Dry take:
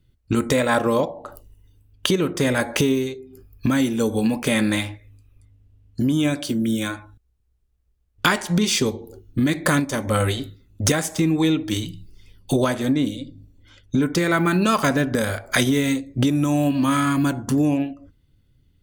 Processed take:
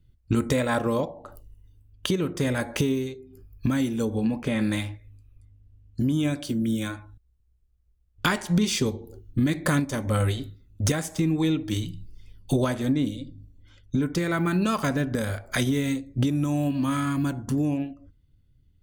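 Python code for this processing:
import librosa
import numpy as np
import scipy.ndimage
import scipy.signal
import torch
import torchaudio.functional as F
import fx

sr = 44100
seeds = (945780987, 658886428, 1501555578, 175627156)

y = fx.lowpass(x, sr, hz=2500.0, slope=6, at=(4.05, 4.61))
y = fx.low_shelf(y, sr, hz=170.0, db=9.0)
y = fx.rider(y, sr, range_db=10, speed_s=2.0)
y = y * librosa.db_to_amplitude(-7.0)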